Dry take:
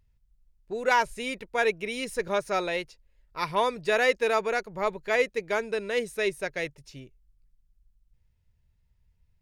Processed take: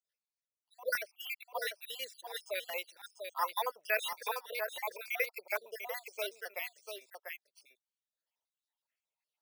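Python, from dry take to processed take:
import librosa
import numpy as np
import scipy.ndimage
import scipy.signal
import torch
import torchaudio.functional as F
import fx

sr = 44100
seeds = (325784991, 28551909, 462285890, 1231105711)

p1 = fx.spec_dropout(x, sr, seeds[0], share_pct=66)
p2 = scipy.signal.sosfilt(scipy.signal.butter(4, 670.0, 'highpass', fs=sr, output='sos'), p1)
p3 = p2 + fx.echo_single(p2, sr, ms=694, db=-6.0, dry=0)
p4 = np.repeat(scipy.signal.resample_poly(p3, 1, 3), 3)[:len(p3)]
y = fx.filter_held_notch(p4, sr, hz=6.3, low_hz=980.0, high_hz=2400.0)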